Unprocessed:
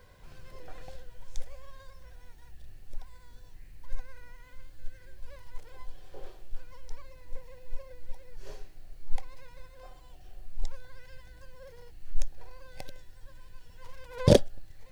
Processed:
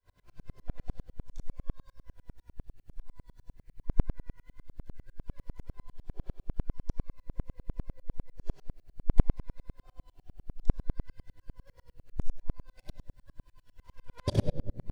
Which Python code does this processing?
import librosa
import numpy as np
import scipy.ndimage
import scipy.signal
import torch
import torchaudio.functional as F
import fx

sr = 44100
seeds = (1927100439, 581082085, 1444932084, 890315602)

y = fx.room_shoebox(x, sr, seeds[0], volume_m3=2400.0, walls='furnished', distance_m=3.0)
y = fx.tremolo_decay(y, sr, direction='swelling', hz=10.0, depth_db=39)
y = y * librosa.db_to_amplitude(-2.0)